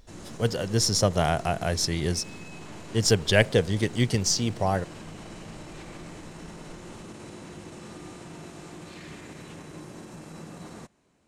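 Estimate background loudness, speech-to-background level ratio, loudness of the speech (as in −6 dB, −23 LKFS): −43.0 LKFS, 18.0 dB, −25.0 LKFS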